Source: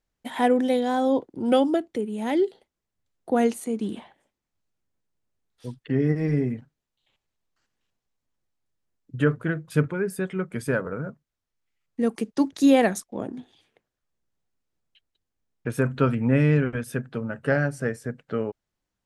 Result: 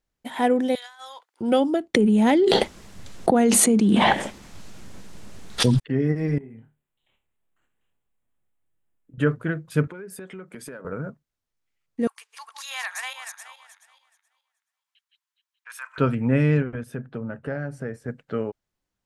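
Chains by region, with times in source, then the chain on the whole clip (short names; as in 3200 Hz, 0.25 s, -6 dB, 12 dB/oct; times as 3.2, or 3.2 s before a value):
0.75–1.41 HPF 1200 Hz 24 dB/oct + negative-ratio compressor -41 dBFS, ratio -0.5
1.94–5.8 LPF 9700 Hz + bell 200 Hz +7 dB 0.3 oct + fast leveller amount 100%
6.38–9.18 compressor 3:1, threshold -45 dBFS + Butterworth band-stop 5100 Hz, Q 1.2 + flutter echo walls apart 4.6 m, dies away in 0.26 s
9.87–10.85 HPF 210 Hz + compressor 12:1, threshold -34 dBFS
12.07–15.98 regenerating reverse delay 0.213 s, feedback 43%, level -2 dB + elliptic high-pass 990 Hz, stop band 80 dB + transient shaper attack -5 dB, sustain -1 dB
16.62–18.08 high shelf 2500 Hz -10.5 dB + compressor 3:1, threshold -26 dBFS
whole clip: dry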